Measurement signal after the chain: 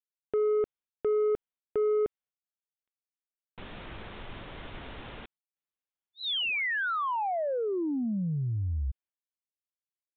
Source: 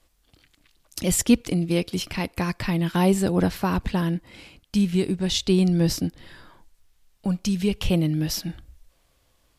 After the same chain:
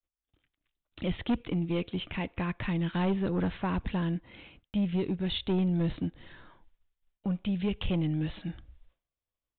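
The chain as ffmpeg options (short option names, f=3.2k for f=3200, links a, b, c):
-af "agate=range=-33dB:threshold=-48dB:ratio=3:detection=peak,aresample=8000,asoftclip=type=tanh:threshold=-18dB,aresample=44100,volume=-4.5dB"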